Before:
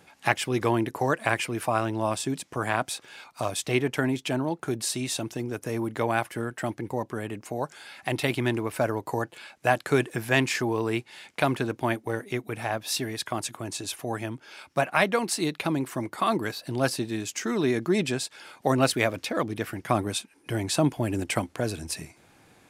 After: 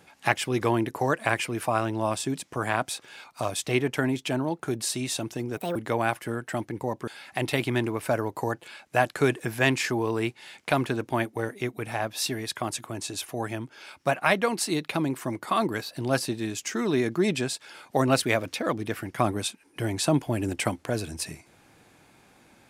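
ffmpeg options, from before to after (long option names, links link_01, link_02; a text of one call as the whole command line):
ffmpeg -i in.wav -filter_complex "[0:a]asplit=4[link_01][link_02][link_03][link_04];[link_01]atrim=end=5.574[link_05];[link_02]atrim=start=5.57:end=5.85,asetpts=PTS-STARTPTS,asetrate=66591,aresample=44100,atrim=end_sample=8177,asetpts=PTS-STARTPTS[link_06];[link_03]atrim=start=5.846:end=7.172[link_07];[link_04]atrim=start=7.778[link_08];[link_05][link_06]acrossfade=duration=0.004:curve1=hsin:curve2=hsin[link_09];[link_09][link_07]acrossfade=duration=0.004:curve1=hsin:curve2=hsin[link_10];[link_10][link_08]acrossfade=duration=0.004:curve1=hsin:curve2=hsin" out.wav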